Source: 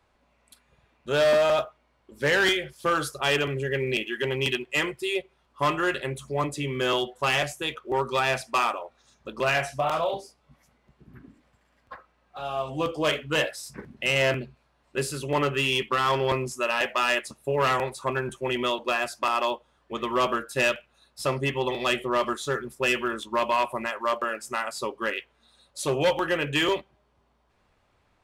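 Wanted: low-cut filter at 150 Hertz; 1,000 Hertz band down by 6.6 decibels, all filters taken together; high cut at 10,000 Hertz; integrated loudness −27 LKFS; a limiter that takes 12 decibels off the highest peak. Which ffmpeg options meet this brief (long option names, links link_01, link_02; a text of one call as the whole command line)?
ffmpeg -i in.wav -af "highpass=150,lowpass=10000,equalizer=frequency=1000:width_type=o:gain=-8.5,volume=8dB,alimiter=limit=-17dB:level=0:latency=1" out.wav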